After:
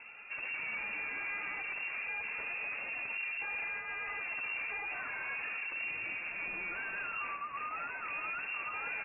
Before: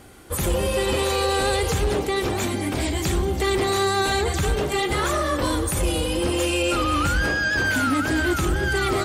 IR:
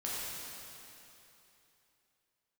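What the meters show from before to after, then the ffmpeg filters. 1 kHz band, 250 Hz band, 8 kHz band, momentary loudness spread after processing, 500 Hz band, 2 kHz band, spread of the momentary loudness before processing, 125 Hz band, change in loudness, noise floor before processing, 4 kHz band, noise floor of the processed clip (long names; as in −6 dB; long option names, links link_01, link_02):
−17.5 dB, −34.0 dB, below −40 dB, 2 LU, −31.0 dB, −9.5 dB, 3 LU, below −35 dB, −14.5 dB, −27 dBFS, below −20 dB, −43 dBFS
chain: -af "alimiter=limit=-22dB:level=0:latency=1,aresample=8000,asoftclip=type=hard:threshold=-34dB,aresample=44100,flanger=delay=1.5:depth=3.1:regen=-37:speed=0.88:shape=triangular,lowpass=frequency=2400:width_type=q:width=0.5098,lowpass=frequency=2400:width_type=q:width=0.6013,lowpass=frequency=2400:width_type=q:width=0.9,lowpass=frequency=2400:width_type=q:width=2.563,afreqshift=-2800"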